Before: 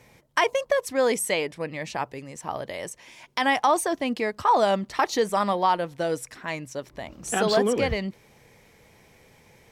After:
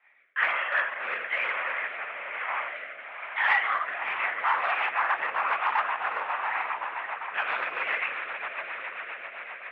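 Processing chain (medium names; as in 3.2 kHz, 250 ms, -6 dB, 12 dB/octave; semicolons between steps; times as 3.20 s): rattle on loud lows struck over -34 dBFS, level -17 dBFS; echo with a slow build-up 82 ms, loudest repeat 8, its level -15 dB; reverberation RT60 0.80 s, pre-delay 12 ms, DRR -7 dB; 4.93–5.54 s: careless resampling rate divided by 6×, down filtered, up hold; LPC vocoder at 8 kHz whisper; rotary cabinet horn 1.1 Hz, later 7.5 Hz, at 3.98 s; 6.06–6.70 s: doubling 48 ms -7 dB; hard clipper -12 dBFS, distortion -14 dB; Butterworth band-pass 1.6 kHz, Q 1.3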